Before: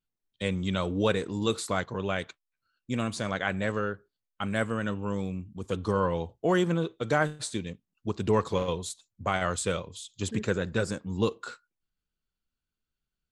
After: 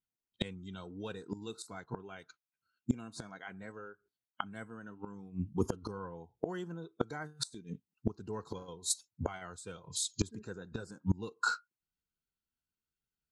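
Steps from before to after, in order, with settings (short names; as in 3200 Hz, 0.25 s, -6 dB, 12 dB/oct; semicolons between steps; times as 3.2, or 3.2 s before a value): notch comb 580 Hz; spectral noise reduction 16 dB; flipped gate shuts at -27 dBFS, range -26 dB; gain +10.5 dB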